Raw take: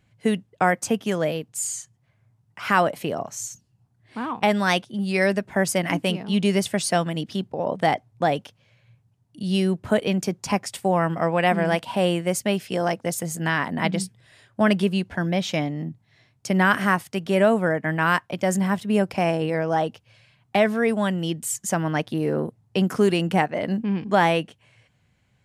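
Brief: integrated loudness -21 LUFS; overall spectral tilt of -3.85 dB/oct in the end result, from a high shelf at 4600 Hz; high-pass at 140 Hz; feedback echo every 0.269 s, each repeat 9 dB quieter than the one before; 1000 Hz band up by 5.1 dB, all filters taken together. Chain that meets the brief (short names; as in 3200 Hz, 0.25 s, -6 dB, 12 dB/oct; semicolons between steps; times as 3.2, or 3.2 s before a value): HPF 140 Hz; bell 1000 Hz +6.5 dB; high shelf 4600 Hz +7.5 dB; feedback echo 0.269 s, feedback 35%, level -9 dB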